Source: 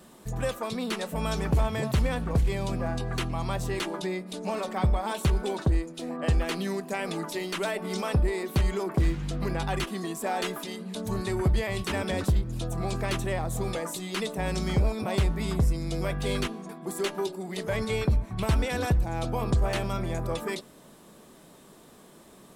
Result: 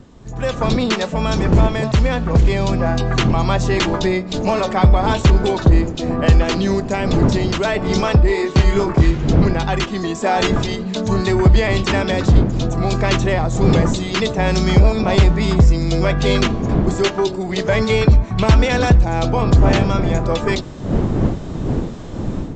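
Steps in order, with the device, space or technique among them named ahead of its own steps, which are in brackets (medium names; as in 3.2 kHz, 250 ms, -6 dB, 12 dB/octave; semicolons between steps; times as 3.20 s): 6.39–7.65 s: dynamic bell 2 kHz, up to -4 dB, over -43 dBFS, Q 1; 8.27–9.11 s: doubling 25 ms -3.5 dB; smartphone video outdoors (wind noise 230 Hz -34 dBFS; level rider gain up to 14 dB; AAC 64 kbps 16 kHz)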